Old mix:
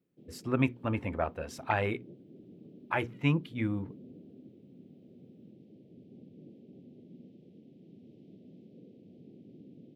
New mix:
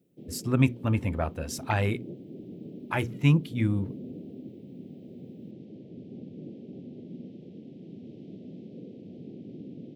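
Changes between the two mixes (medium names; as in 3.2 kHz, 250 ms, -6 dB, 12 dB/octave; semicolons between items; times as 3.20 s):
speech: add tone controls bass +9 dB, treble +14 dB; background +10.0 dB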